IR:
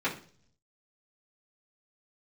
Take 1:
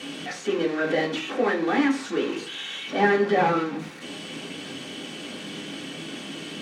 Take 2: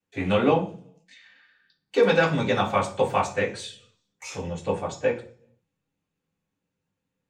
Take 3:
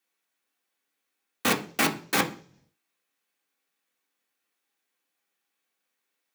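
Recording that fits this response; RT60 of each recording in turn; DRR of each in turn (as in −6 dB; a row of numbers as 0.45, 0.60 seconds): 2; 0.45, 0.45, 0.45 seconds; −4.0, −10.5, 0.0 decibels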